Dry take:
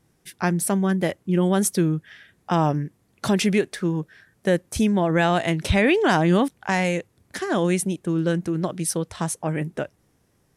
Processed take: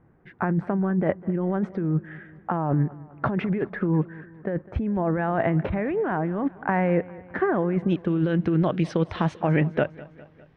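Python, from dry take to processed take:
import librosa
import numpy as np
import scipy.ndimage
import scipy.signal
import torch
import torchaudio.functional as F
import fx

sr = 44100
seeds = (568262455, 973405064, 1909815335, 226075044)

y = fx.lowpass(x, sr, hz=fx.steps((0.0, 1700.0), (7.88, 3200.0)), slope=24)
y = fx.over_compress(y, sr, threshold_db=-25.0, ratio=-1.0)
y = fx.echo_feedback(y, sr, ms=203, feedback_pct=55, wet_db=-20.0)
y = F.gain(torch.from_numpy(y), 2.0).numpy()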